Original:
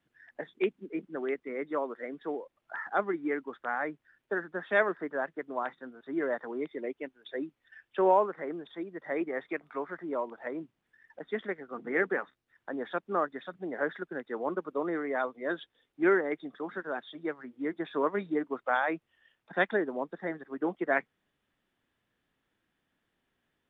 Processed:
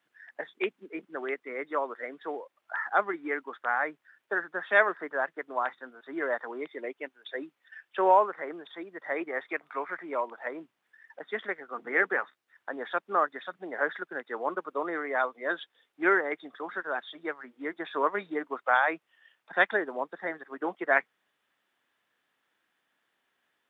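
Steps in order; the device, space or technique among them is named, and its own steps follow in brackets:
0:09.78–0:10.21: parametric band 2,300 Hz +11 dB 0.32 octaves
filter by subtraction (in parallel: low-pass filter 1,100 Hz 12 dB per octave + polarity inversion)
on the sum: level +3.5 dB

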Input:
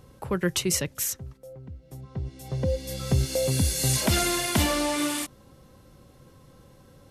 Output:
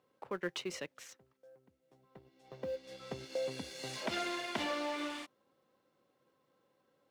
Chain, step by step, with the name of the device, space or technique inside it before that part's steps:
phone line with mismatched companding (band-pass filter 340–3,600 Hz; mu-law and A-law mismatch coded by A)
level −8 dB

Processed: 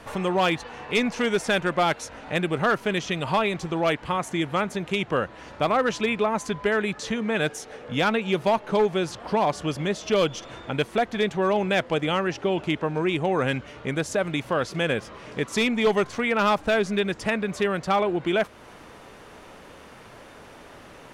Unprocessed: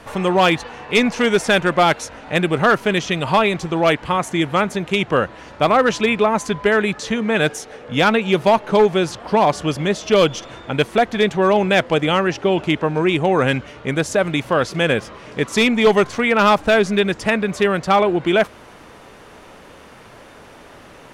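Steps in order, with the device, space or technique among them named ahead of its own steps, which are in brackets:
parallel compression (in parallel at −1 dB: downward compressor, threshold −26 dBFS, peak gain reduction 15.5 dB)
on the sum: level −9 dB

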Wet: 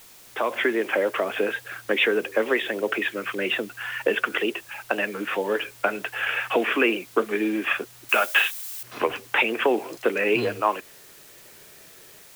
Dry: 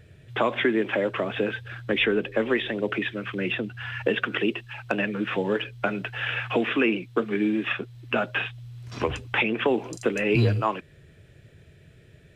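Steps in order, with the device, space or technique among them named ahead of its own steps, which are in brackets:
dictaphone (band-pass filter 390–3,100 Hz; automatic gain control gain up to 11.5 dB; tape wow and flutter; white noise bed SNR 23 dB)
0:08.09–0:08.83: spectral tilt +4 dB per octave
level −5.5 dB

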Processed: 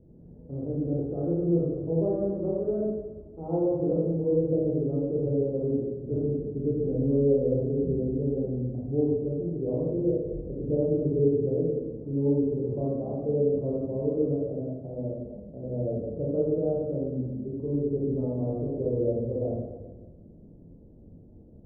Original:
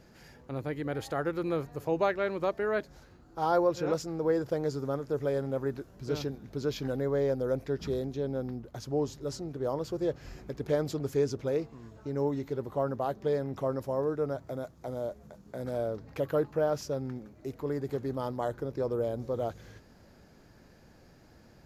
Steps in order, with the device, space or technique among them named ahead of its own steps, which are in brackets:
next room (low-pass filter 470 Hz 24 dB per octave; convolution reverb RT60 1.3 s, pre-delay 20 ms, DRR −6 dB)

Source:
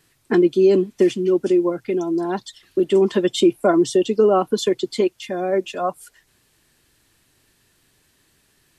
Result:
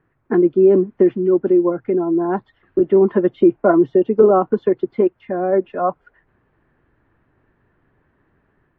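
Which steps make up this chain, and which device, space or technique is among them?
action camera in a waterproof case (low-pass filter 1,600 Hz 24 dB per octave; automatic gain control gain up to 4 dB; AAC 48 kbit/s 48,000 Hz)

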